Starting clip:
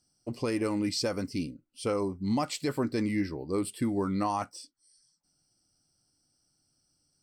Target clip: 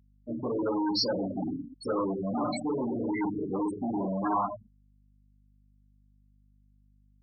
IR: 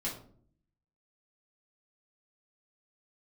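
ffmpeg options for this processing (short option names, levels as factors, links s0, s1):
-filter_complex "[1:a]atrim=start_sample=2205,afade=t=out:st=0.42:d=0.01,atrim=end_sample=18963[s0];[0:a][s0]afir=irnorm=-1:irlink=0,asoftclip=type=hard:threshold=0.0422,afftfilt=real='re*gte(hypot(re,im),0.0501)':imag='im*gte(hypot(re,im),0.0501)':win_size=1024:overlap=0.75,highpass=f=660:p=1,aeval=exprs='val(0)+0.000355*(sin(2*PI*50*n/s)+sin(2*PI*2*50*n/s)/2+sin(2*PI*3*50*n/s)/3+sin(2*PI*4*50*n/s)/4+sin(2*PI*5*50*n/s)/5)':c=same,volume=2.37"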